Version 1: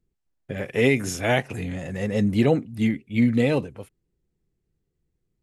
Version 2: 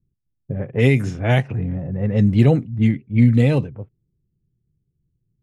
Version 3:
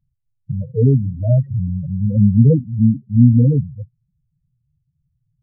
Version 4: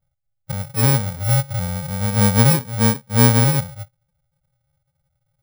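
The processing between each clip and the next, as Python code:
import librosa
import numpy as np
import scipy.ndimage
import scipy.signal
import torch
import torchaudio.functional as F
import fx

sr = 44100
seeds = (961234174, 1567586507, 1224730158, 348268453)

y1 = fx.env_lowpass(x, sr, base_hz=310.0, full_db=-16.0)
y1 = fx.peak_eq(y1, sr, hz=120.0, db=12.0, octaves=1.2)
y2 = fx.spec_topn(y1, sr, count=4)
y2 = F.gain(torch.from_numpy(y2), 4.0).numpy()
y3 = fx.bit_reversed(y2, sr, seeds[0], block=64)
y3 = F.gain(torch.from_numpy(y3), -3.0).numpy()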